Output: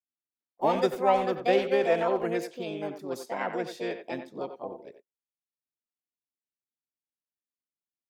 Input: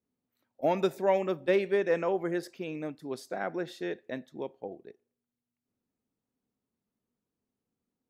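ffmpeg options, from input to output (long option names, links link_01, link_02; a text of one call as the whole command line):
ffmpeg -i in.wav -filter_complex "[0:a]asplit=2[link_01][link_02];[link_02]asetrate=58866,aresample=44100,atempo=0.749154,volume=-2dB[link_03];[link_01][link_03]amix=inputs=2:normalize=0,asplit=2[link_04][link_05];[link_05]adelay=90,highpass=300,lowpass=3400,asoftclip=type=hard:threshold=-20dB,volume=-9dB[link_06];[link_04][link_06]amix=inputs=2:normalize=0,agate=range=-28dB:threshold=-53dB:ratio=16:detection=peak" out.wav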